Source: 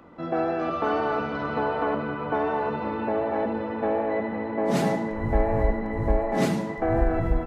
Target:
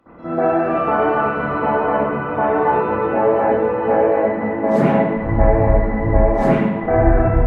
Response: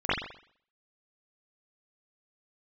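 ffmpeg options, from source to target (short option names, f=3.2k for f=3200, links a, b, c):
-filter_complex "[0:a]asettb=1/sr,asplit=3[a][b][c];[a]atrim=end=2.534[d];[b]atrim=start=2.53:end=4.16,asetpts=PTS-STARTPTS,afade=t=in:d=0.004:c=qsin,afade=t=out:st=1.626:d=0.004:c=qsin,asplit=2[e][f];[f]adelay=16,volume=-3dB[g];[e][g]amix=inputs=2:normalize=0,atrim=end_sample=71883[h];[c]atrim=start=4.156[i];[d][h]acrossfade=d=0.004:c1=hsin:c2=qsin[j];[j][i]acrossfade=d=0.004:c1=qsin:c2=hsin[k];[1:a]atrim=start_sample=2205,asetrate=32634,aresample=44100[l];[k][l]afir=irnorm=-1:irlink=0,volume=-8.5dB"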